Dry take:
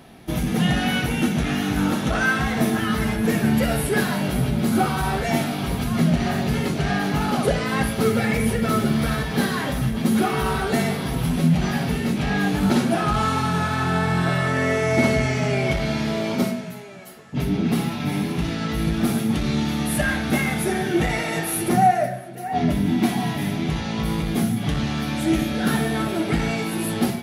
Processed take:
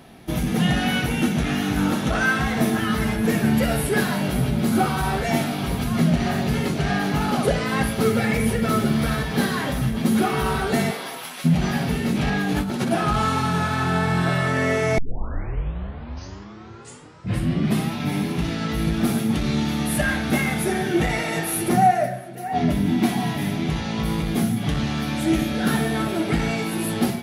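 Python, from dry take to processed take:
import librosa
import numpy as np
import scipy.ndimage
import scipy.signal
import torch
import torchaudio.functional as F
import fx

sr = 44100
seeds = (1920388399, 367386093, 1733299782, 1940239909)

y = fx.highpass(x, sr, hz=fx.line((10.9, 360.0), (11.44, 1200.0)), slope=12, at=(10.9, 11.44), fade=0.02)
y = fx.over_compress(y, sr, threshold_db=-23.0, ratio=-1.0, at=(12.12, 12.91))
y = fx.edit(y, sr, fx.tape_start(start_s=14.98, length_s=2.97), tone=tone)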